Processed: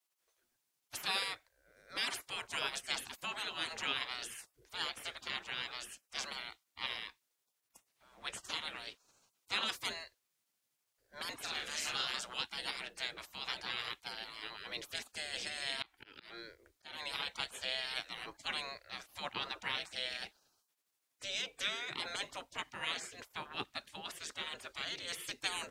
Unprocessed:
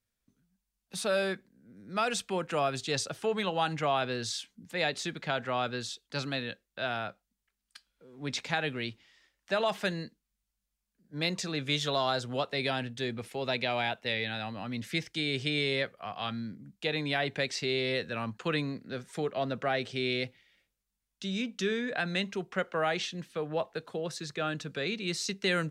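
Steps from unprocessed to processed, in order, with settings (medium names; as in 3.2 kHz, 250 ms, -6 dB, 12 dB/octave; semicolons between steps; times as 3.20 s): spectral gate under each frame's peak -20 dB weak; 11.41–12.05 s: doubling 42 ms -5 dB; 15.82–17.16 s: slow attack 215 ms; trim +6 dB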